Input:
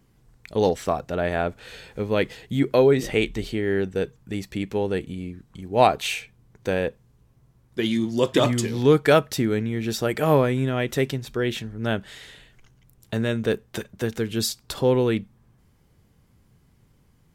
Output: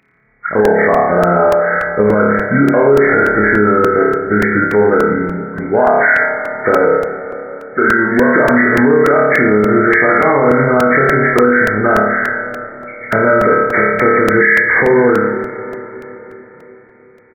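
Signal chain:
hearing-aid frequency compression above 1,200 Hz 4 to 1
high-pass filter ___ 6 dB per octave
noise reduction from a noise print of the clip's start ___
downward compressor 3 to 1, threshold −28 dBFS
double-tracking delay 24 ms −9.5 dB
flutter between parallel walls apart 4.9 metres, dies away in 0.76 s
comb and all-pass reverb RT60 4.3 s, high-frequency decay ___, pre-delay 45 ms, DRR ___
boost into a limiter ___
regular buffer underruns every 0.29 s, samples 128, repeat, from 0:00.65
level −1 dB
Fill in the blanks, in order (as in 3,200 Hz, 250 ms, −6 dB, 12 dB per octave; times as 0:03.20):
400 Hz, 14 dB, 0.7×, 12 dB, +20.5 dB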